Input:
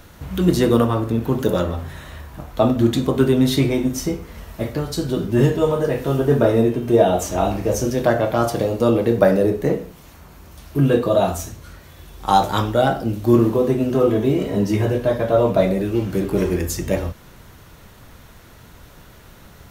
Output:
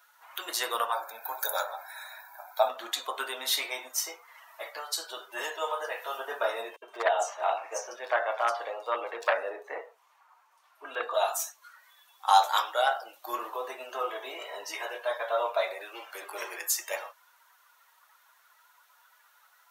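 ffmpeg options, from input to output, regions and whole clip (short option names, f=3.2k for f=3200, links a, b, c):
-filter_complex "[0:a]asettb=1/sr,asplit=3[a][b][c];[a]atrim=end=0.924[d];[b]atrim=start=0.92:end=2.69,asetpts=PTS-STARTPTS,afade=t=in:d=0.004:c=qsin,afade=t=out:st=1.766:d=0.004:c=qsin,asuperstop=centerf=3000:order=4:qfactor=4.3,highshelf=f=12k:g=10,aecho=1:1:1.3:0.59,atrim=end_sample=78057[e];[c]atrim=start=2.686[f];[d][e]acrossfade=d=0.004:c1=hsin:c2=qsin[g];[g][f]acrossfade=d=0.004:c1=qsin:c2=hsin,asettb=1/sr,asplit=3[h][i][j];[h]atrim=end=6.764[k];[i]atrim=start=6.76:end=11.14,asetpts=PTS-STARTPTS,afade=t=in:d=0.004:c=qsin,afade=t=out:st=4.376:d=0.004:c=qsin,aemphasis=mode=reproduction:type=50fm,aeval=exprs='0.447*(abs(mod(val(0)/0.447+3,4)-2)-1)':c=same,acrossover=split=4200[l][m];[l]adelay=60[n];[n][m]amix=inputs=2:normalize=0,atrim=end_sample=193158[o];[j]atrim=start=11.136[p];[k][o]acrossfade=d=0.004:c1=hsin:c2=qsin[q];[q][p]acrossfade=d=0.004:c1=qsin:c2=hsin,highpass=f=780:w=0.5412,highpass=f=780:w=1.3066,afftdn=nr=14:nf=-44,highshelf=f=8.8k:g=6.5,volume=-2.5dB"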